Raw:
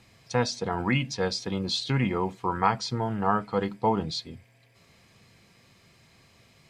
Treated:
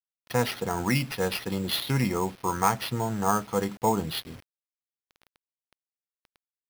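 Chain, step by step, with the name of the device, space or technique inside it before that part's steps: early 8-bit sampler (sample-rate reducer 7.6 kHz, jitter 0%; bit crusher 8-bit)

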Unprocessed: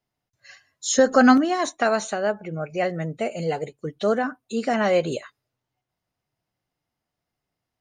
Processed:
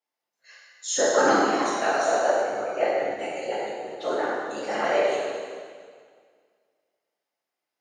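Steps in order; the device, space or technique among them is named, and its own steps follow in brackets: whispering ghost (whisper effect; high-pass 460 Hz 12 dB/octave; reverberation RT60 1.9 s, pre-delay 5 ms, DRR -6.5 dB); 2.08–3.14 s: peaking EQ 570 Hz +5.5 dB 1.6 oct; trim -7.5 dB

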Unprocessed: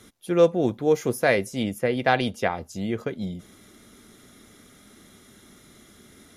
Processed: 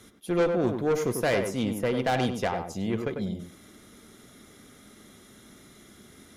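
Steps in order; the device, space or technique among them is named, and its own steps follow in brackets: rockabilly slapback (valve stage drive 20 dB, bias 0.35; tape echo 96 ms, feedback 23%, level -3.5 dB, low-pass 1.4 kHz)

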